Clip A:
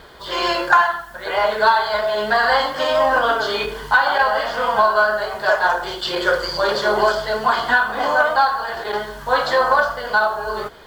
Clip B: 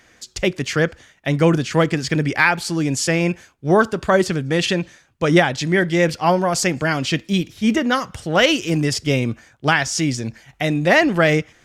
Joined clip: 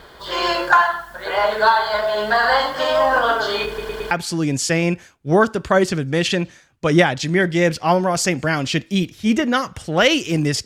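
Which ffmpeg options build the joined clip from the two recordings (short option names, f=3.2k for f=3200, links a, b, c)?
-filter_complex "[0:a]apad=whole_dur=10.65,atrim=end=10.65,asplit=4[a][b][c][d];[a]atrim=end=3.782[e];[b]atrim=start=3.668:end=3.782[f];[c]atrim=start=3.668:end=3.782[g];[d]atrim=start=3.668:end=3.782[h];[1:a]atrim=start=2.488:end=9.03[i];[e][f]acrossfade=d=0.004:c1=hsin:c2=hsin[j];[j][g]acrossfade=d=0.004:c1=hsin:c2=hsin[k];[k][h]acrossfade=d=0.004:c1=hsin:c2=hsin[l];[l][i]acrossfade=d=0.004:c1=hsin:c2=hsin"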